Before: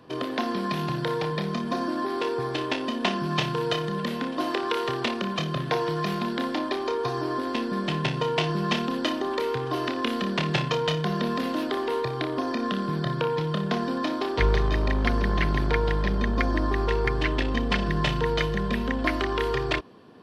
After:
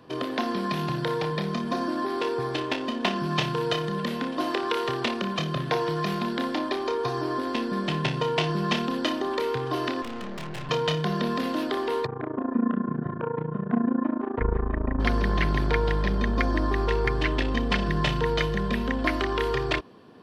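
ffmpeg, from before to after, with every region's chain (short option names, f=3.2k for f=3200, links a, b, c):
-filter_complex "[0:a]asettb=1/sr,asplit=3[a][b][c];[a]atrim=end=2.604[d];[b]atrim=start=2.6:end=3.16,asetpts=PTS-STARTPTS,afade=t=in:d=0.004:c=qsin,afade=t=out:st=0.556:d=0.004:c=qsin,aeval=exprs='sgn(val(0))*max(abs(val(0))-0.00316,0)':c=same,adynamicsmooth=sensitivity=6:basefreq=7.8k[e];[c]atrim=start=3.156[f];[d][e]acrossfade=d=0.004:c1=hsin:c2=qsin[g];[g][f]acrossfade=d=0.004:c1=qsin:c2=hsin,asettb=1/sr,asplit=3[h][i][j];[h]atrim=end=10.024[k];[i]atrim=start=10.02:end=10.69,asetpts=PTS-STARTPTS,afade=t=in:d=0.004:c=qsin,afade=t=out:st=0.666:d=0.004:c=qsin,lowpass=3.1k,aeval=exprs='(tanh(50.1*val(0)+0.8)-tanh(0.8))/50.1':c=same,asplit=2[l][m];[m]adelay=17,volume=-13dB[n];[l][n]amix=inputs=2:normalize=0,atrim=end_sample=29547[o];[j]atrim=start=10.686[p];[k][o]acrossfade=d=0.004:c1=hsin:c2=qsin[q];[q][p]acrossfade=d=0.004:c1=qsin:c2=hsin,asettb=1/sr,asplit=3[r][s][t];[r]atrim=end=12.064[u];[s]atrim=start=12.06:end=15,asetpts=PTS-STARTPTS,afade=t=in:d=0.004:c=qsin,afade=t=out:st=2.936:d=0.004:c=qsin,lowpass=f=1.7k:w=0.5412,lowpass=f=1.7k:w=1.3066,equalizer=f=240:w=6.8:g=14,tremolo=f=28:d=0.889[v];[t]atrim=start=14.996[w];[u][v]acrossfade=d=0.004:c1=hsin:c2=qsin[x];[x][w]acrossfade=d=0.004:c1=qsin:c2=hsin"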